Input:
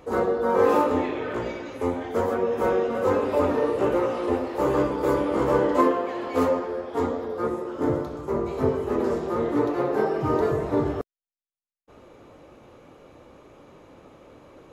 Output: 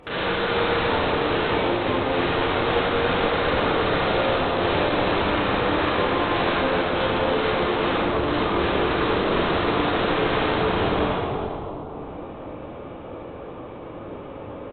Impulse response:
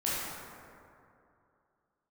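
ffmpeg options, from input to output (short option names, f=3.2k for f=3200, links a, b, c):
-filter_complex "[0:a]alimiter=limit=-16.5dB:level=0:latency=1:release=39,acompressor=threshold=-30dB:ratio=16,aresample=8000,aeval=exprs='(mod(26.6*val(0)+1,2)-1)/26.6':c=same,aresample=44100[a];[1:a]atrim=start_sample=2205,asetrate=25137,aresample=44100[b];[a][b]afir=irnorm=-1:irlink=0"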